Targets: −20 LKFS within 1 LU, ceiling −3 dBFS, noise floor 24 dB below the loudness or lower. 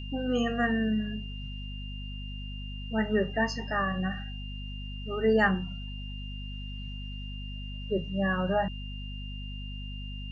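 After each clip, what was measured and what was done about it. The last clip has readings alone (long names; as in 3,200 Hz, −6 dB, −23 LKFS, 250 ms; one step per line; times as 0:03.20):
mains hum 50 Hz; hum harmonics up to 250 Hz; level of the hum −36 dBFS; interfering tone 2,800 Hz; level of the tone −44 dBFS; integrated loudness −32.0 LKFS; sample peak −12.0 dBFS; target loudness −20.0 LKFS
→ mains-hum notches 50/100/150/200/250 Hz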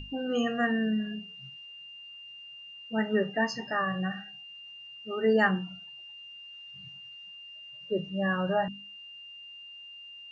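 mains hum none found; interfering tone 2,800 Hz; level of the tone −44 dBFS
→ notch filter 2,800 Hz, Q 30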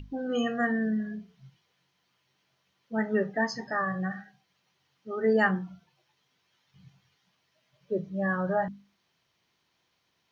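interfering tone none found; integrated loudness −29.5 LKFS; sample peak −11.5 dBFS; target loudness −20.0 LKFS
→ level +9.5 dB
brickwall limiter −3 dBFS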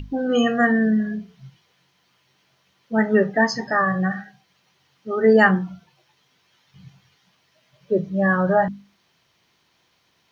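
integrated loudness −20.0 LKFS; sample peak −3.0 dBFS; background noise floor −65 dBFS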